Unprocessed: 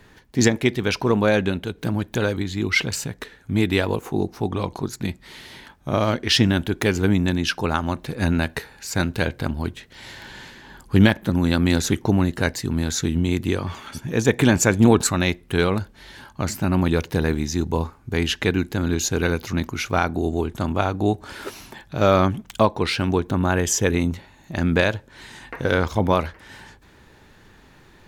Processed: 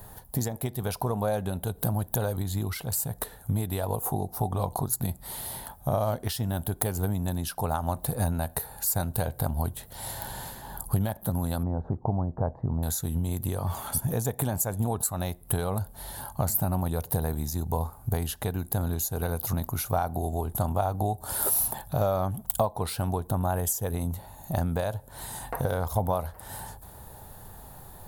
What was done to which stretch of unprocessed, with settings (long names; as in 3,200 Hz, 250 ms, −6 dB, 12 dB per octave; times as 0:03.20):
0:11.63–0:12.83: low-pass filter 1,100 Hz 24 dB per octave
0:21.20–0:21.68: high-shelf EQ 4,600 Hz +6 dB
whole clip: bass and treble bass 0 dB, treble +10 dB; downward compressor 6 to 1, threshold −28 dBFS; drawn EQ curve 120 Hz 0 dB, 330 Hz −12 dB, 730 Hz +4 dB, 2,300 Hz −19 dB, 3,800 Hz −13 dB, 6,100 Hz −16 dB, 11,000 Hz +6 dB; level +6.5 dB